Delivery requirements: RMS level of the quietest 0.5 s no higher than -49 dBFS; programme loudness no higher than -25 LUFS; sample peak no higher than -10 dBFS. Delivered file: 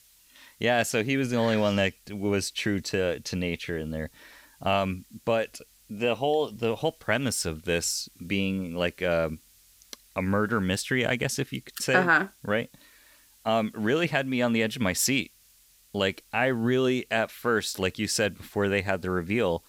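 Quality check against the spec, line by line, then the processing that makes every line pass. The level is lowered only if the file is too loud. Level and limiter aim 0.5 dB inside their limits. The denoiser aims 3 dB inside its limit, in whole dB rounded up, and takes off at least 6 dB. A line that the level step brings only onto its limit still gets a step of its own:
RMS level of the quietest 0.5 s -59 dBFS: OK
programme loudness -27.0 LUFS: OK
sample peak -8.0 dBFS: fail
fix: limiter -10.5 dBFS

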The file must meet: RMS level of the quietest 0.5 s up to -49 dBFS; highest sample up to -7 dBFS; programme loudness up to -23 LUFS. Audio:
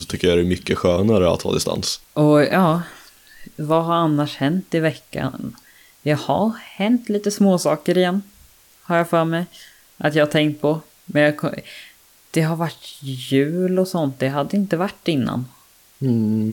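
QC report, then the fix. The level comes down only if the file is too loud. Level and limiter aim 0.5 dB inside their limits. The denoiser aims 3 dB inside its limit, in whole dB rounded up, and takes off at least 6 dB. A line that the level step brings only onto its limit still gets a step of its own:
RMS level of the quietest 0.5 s -52 dBFS: OK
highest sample -4.5 dBFS: fail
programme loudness -20.0 LUFS: fail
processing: gain -3.5 dB

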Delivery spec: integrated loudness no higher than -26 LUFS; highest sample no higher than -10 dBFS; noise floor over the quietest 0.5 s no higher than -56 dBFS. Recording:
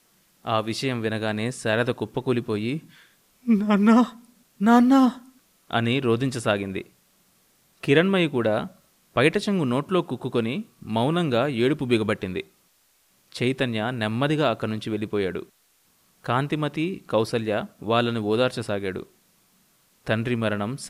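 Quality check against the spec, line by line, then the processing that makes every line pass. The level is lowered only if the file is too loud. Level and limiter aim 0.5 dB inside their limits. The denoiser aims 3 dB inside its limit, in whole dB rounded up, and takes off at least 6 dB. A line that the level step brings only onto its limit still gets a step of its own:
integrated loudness -24.0 LUFS: fail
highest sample -5.5 dBFS: fail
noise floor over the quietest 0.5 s -64 dBFS: OK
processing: gain -2.5 dB; limiter -10.5 dBFS

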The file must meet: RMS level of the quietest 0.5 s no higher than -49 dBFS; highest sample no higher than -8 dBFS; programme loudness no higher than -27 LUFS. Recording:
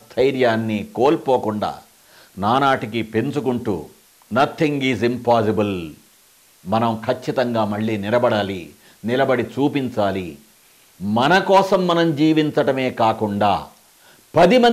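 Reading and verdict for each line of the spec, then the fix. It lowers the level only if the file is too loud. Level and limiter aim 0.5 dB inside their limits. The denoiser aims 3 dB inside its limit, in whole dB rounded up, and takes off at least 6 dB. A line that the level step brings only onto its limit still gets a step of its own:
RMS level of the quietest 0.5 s -53 dBFS: OK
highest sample -5.5 dBFS: fail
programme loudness -19.0 LUFS: fail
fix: gain -8.5 dB

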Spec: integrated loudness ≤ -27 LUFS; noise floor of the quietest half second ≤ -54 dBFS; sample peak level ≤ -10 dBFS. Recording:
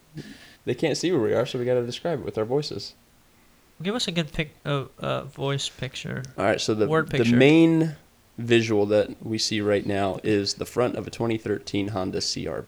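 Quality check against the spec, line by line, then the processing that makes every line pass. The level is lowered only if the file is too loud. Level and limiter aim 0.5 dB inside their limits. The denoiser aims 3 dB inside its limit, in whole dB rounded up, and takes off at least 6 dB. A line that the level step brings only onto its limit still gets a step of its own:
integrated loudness -24.5 LUFS: fail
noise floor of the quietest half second -57 dBFS: OK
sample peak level -5.0 dBFS: fail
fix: gain -3 dB; limiter -10.5 dBFS

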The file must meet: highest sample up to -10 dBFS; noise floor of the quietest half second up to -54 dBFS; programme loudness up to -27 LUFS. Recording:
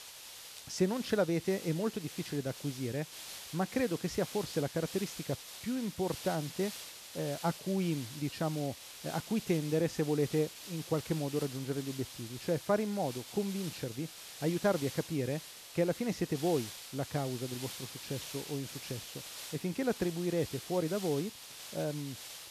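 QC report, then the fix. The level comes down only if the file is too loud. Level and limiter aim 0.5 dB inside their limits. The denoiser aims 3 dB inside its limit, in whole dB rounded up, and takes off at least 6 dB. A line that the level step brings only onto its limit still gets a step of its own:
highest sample -18.0 dBFS: OK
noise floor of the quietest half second -50 dBFS: fail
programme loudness -35.5 LUFS: OK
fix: denoiser 7 dB, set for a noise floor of -50 dBFS

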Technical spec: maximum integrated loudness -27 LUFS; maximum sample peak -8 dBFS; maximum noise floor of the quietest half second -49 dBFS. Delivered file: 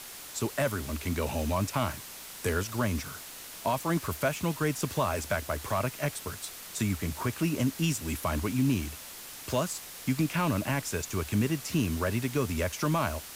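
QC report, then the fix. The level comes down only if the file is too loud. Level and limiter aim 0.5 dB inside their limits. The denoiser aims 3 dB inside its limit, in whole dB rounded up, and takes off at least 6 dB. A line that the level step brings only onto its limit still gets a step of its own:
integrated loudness -31.0 LUFS: OK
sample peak -16.5 dBFS: OK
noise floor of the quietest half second -44 dBFS: fail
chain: denoiser 8 dB, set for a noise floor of -44 dBFS

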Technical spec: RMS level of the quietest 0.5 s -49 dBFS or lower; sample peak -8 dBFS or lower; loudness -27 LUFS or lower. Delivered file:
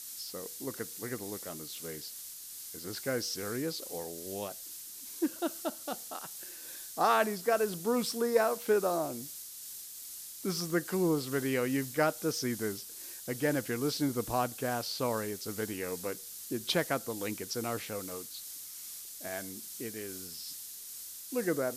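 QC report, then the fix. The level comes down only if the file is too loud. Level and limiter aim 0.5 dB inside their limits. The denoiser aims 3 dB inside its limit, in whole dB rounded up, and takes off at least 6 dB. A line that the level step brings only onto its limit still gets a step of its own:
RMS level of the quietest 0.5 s -46 dBFS: fail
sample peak -13.5 dBFS: OK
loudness -34.5 LUFS: OK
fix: denoiser 6 dB, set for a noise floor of -46 dBFS

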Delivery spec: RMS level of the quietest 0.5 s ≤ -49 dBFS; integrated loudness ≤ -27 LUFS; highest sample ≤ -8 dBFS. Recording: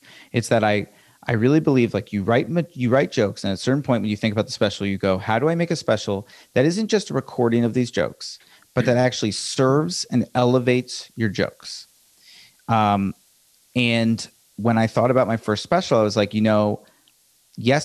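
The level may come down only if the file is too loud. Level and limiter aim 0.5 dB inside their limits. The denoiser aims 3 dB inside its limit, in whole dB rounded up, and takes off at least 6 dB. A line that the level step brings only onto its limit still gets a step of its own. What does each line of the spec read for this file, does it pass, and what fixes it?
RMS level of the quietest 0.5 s -59 dBFS: OK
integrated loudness -21.0 LUFS: fail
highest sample -5.0 dBFS: fail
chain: gain -6.5 dB

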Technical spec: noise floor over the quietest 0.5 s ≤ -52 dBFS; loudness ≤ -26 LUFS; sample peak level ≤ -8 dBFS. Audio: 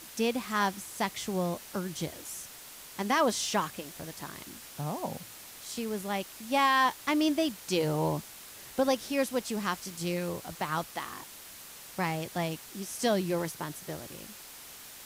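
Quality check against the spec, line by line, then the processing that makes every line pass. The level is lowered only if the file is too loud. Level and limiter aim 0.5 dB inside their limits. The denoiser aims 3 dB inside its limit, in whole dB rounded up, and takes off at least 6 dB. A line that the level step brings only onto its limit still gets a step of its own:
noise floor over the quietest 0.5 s -48 dBFS: fail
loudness -31.5 LUFS: OK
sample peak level -15.5 dBFS: OK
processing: denoiser 7 dB, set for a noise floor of -48 dBFS

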